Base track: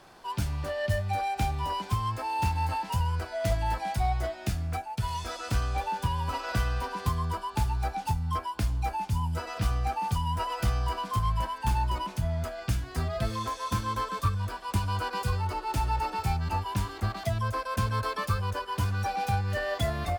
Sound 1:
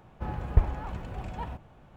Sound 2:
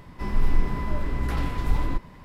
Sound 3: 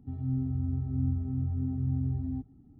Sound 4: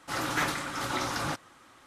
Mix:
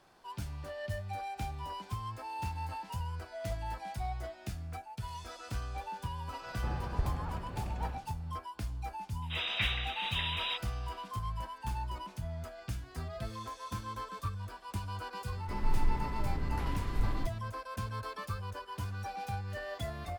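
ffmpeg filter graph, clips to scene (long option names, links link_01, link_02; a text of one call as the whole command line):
ffmpeg -i bed.wav -i cue0.wav -i cue1.wav -i cue2.wav -i cue3.wav -filter_complex "[0:a]volume=-10dB[link_01];[1:a]alimiter=limit=-17dB:level=0:latency=1:release=71[link_02];[4:a]lowpass=frequency=3400:width_type=q:width=0.5098,lowpass=frequency=3400:width_type=q:width=0.6013,lowpass=frequency=3400:width_type=q:width=0.9,lowpass=frequency=3400:width_type=q:width=2.563,afreqshift=-4000[link_03];[link_02]atrim=end=1.96,asetpts=PTS-STARTPTS,volume=-3.5dB,afade=type=in:duration=0.004:curve=hsin,afade=type=out:start_time=1.956:duration=0.004:curve=hsin,adelay=283122S[link_04];[link_03]atrim=end=1.86,asetpts=PTS-STARTPTS,volume=-4dB,afade=type=in:duration=0.004:curve=hsin,afade=type=out:start_time=1.856:duration=0.004:curve=hsin,adelay=406602S[link_05];[2:a]atrim=end=2.24,asetpts=PTS-STARTPTS,volume=-8.5dB,afade=type=in:duration=0.004:curve=hsin,afade=type=out:start_time=2.236:duration=0.004:curve=hsin,adelay=15290[link_06];[link_01][link_04][link_05][link_06]amix=inputs=4:normalize=0" out.wav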